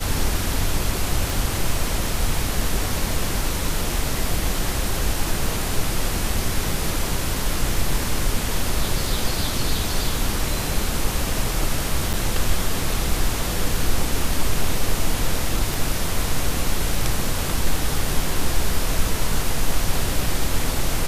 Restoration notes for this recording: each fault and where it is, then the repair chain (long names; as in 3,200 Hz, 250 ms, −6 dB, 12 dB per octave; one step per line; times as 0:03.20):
0:01.30: click
0:12.13–0:12.14: drop-out 6.6 ms
0:15.74: click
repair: click removal
repair the gap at 0:12.13, 6.6 ms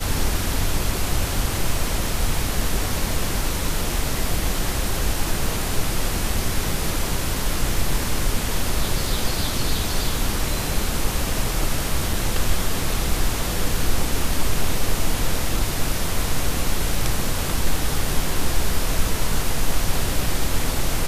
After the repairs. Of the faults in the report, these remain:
0:01.30: click